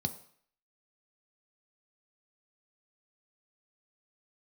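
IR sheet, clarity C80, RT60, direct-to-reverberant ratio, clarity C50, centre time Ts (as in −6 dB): 17.5 dB, 0.55 s, 8.0 dB, 14.5 dB, 7 ms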